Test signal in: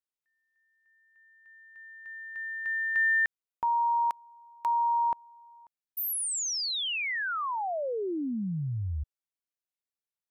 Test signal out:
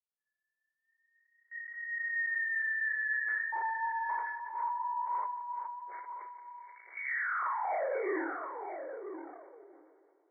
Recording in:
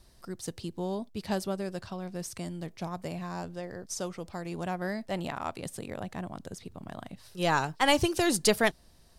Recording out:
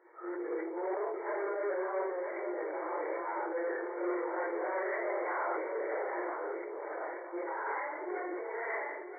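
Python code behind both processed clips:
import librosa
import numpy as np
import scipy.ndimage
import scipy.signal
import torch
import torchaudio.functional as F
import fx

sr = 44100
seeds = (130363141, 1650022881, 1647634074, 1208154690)

p1 = fx.phase_scramble(x, sr, seeds[0], window_ms=200)
p2 = fx.gate_hold(p1, sr, open_db=-54.0, close_db=-57.0, hold_ms=13.0, range_db=-21, attack_ms=1.8, release_ms=26.0)
p3 = p2 + 0.39 * np.pad(p2, (int(2.1 * sr / 1000.0), 0))[:len(p2)]
p4 = fx.over_compress(p3, sr, threshold_db=-34.0, ratio=-1.0)
p5 = fx.chorus_voices(p4, sr, voices=6, hz=0.67, base_ms=29, depth_ms=4.3, mix_pct=40)
p6 = fx.wow_flutter(p5, sr, seeds[1], rate_hz=0.35, depth_cents=75.0)
p7 = 10.0 ** (-38.0 / 20.0) * np.tanh(p6 / 10.0 ** (-38.0 / 20.0))
p8 = fx.brickwall_bandpass(p7, sr, low_hz=310.0, high_hz=2300.0)
p9 = p8 + fx.echo_single(p8, sr, ms=976, db=-9.0, dry=0)
p10 = fx.rev_plate(p9, sr, seeds[2], rt60_s=3.0, hf_ratio=0.95, predelay_ms=0, drr_db=12.5)
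p11 = fx.sustainer(p10, sr, db_per_s=34.0)
y = p11 * 10.0 ** (7.5 / 20.0)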